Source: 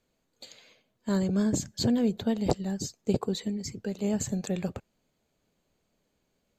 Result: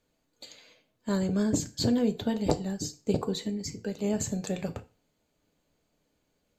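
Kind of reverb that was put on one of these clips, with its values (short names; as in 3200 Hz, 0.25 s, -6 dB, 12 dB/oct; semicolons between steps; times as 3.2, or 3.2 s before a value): FDN reverb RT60 0.33 s, low-frequency decay 0.95×, high-frequency decay 0.95×, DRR 7.5 dB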